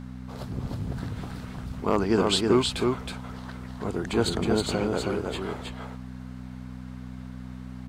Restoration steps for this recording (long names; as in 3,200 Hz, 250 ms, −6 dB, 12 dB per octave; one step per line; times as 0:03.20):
clipped peaks rebuilt −11 dBFS
hum removal 62.9 Hz, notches 4
echo removal 318 ms −3.5 dB